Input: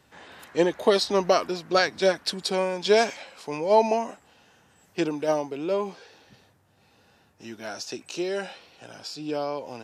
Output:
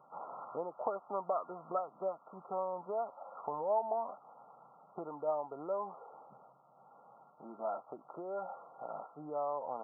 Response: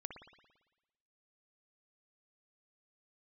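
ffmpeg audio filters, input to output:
-af "acompressor=threshold=-36dB:ratio=5,afftfilt=real='re*between(b*sr/4096,120,1400)':imag='im*between(b*sr/4096,120,1400)':win_size=4096:overlap=0.75,lowshelf=frequency=490:width_type=q:width=1.5:gain=-11,volume=4dB"

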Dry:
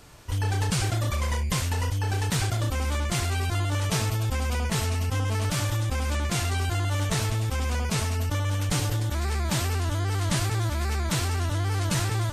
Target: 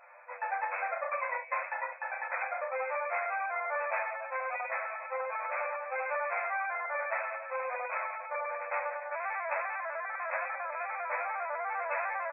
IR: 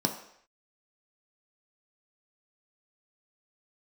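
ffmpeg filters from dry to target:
-filter_complex "[0:a]afftfilt=real='re*between(b*sr/4096,490,2600)':imag='im*between(b*sr/4096,490,2600)':win_size=4096:overlap=0.75,asplit=2[link_01][link_02];[link_02]adelay=9.5,afreqshift=-0.36[link_03];[link_01][link_03]amix=inputs=2:normalize=1,volume=4dB"

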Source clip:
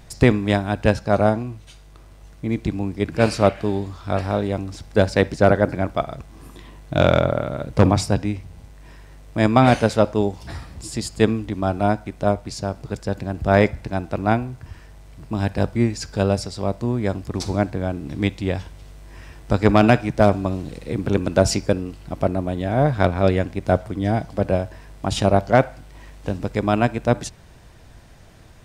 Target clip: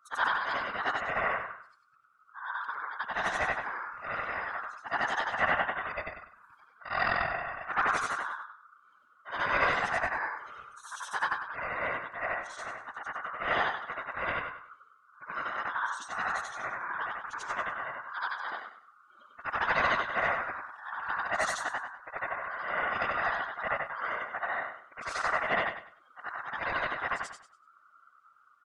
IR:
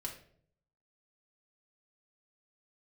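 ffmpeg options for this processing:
-af "afftfilt=real='re':imag='-im':win_size=8192:overlap=0.75,aeval=exprs='val(0)*sin(2*PI*1300*n/s)':channel_layout=same,afftfilt=real='hypot(re,im)*cos(2*PI*random(0))':imag='hypot(re,im)*sin(2*PI*random(1))':win_size=512:overlap=0.75,afftdn=noise_reduction=18:noise_floor=-55,aecho=1:1:99|198|297:0.316|0.0854|0.0231"

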